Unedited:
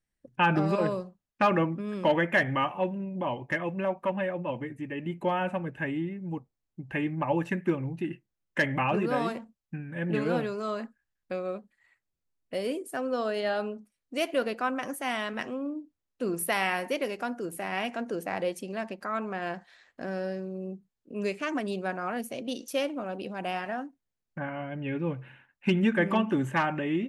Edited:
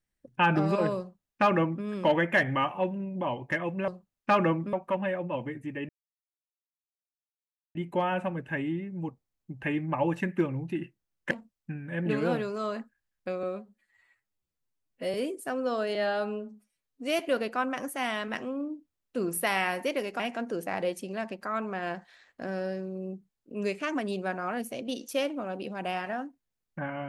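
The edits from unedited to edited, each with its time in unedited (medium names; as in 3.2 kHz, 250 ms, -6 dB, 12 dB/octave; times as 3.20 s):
1.00–1.85 s: copy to 3.88 s
5.04 s: insert silence 1.86 s
8.60–9.35 s: delete
11.47–12.61 s: stretch 1.5×
13.42–14.25 s: stretch 1.5×
17.25–17.79 s: delete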